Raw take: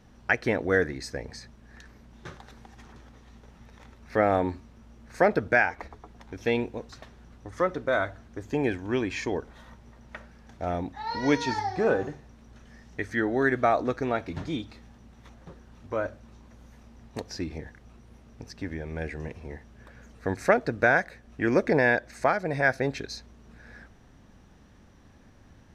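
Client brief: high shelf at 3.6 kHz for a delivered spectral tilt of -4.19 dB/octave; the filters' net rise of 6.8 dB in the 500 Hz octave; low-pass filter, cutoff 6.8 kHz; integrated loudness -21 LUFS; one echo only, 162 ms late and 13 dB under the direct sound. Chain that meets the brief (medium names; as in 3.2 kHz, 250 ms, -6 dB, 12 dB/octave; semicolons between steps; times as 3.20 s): low-pass 6.8 kHz; peaking EQ 500 Hz +8 dB; treble shelf 3.6 kHz +7 dB; delay 162 ms -13 dB; trim +1.5 dB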